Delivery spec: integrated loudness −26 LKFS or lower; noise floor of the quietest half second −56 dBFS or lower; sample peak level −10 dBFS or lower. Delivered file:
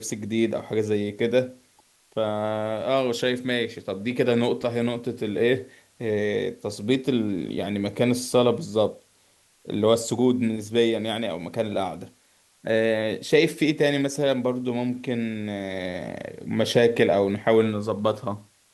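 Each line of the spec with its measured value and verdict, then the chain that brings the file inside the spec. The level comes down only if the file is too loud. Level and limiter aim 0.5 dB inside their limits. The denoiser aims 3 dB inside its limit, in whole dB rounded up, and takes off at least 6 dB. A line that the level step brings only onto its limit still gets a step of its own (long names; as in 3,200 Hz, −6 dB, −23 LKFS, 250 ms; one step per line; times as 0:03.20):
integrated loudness −24.5 LKFS: out of spec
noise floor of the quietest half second −61 dBFS: in spec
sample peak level −6.0 dBFS: out of spec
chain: level −2 dB
brickwall limiter −10.5 dBFS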